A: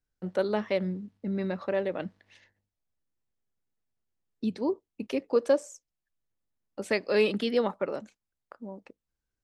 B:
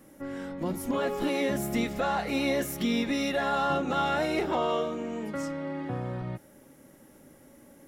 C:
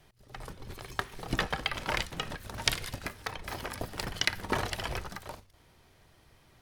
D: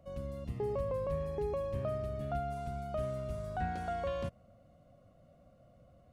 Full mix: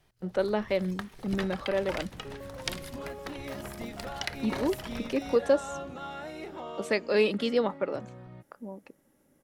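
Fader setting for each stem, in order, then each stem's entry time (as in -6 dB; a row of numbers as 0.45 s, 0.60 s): 0.0 dB, -12.5 dB, -6.5 dB, -10.0 dB; 0.00 s, 2.05 s, 0.00 s, 1.65 s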